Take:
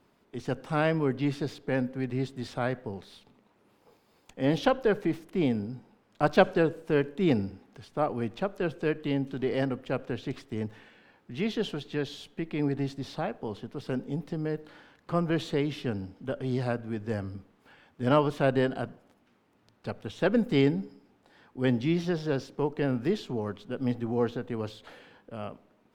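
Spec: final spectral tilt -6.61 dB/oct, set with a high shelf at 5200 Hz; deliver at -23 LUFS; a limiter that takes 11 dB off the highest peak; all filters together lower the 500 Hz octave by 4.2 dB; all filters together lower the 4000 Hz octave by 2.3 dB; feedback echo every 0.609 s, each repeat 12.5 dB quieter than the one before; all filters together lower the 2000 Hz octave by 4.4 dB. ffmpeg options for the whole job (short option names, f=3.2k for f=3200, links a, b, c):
-af "equalizer=f=500:t=o:g=-5,equalizer=f=2k:t=o:g=-6,equalizer=f=4k:t=o:g=-3.5,highshelf=f=5.2k:g=7.5,alimiter=limit=-20dB:level=0:latency=1,aecho=1:1:609|1218|1827:0.237|0.0569|0.0137,volume=11dB"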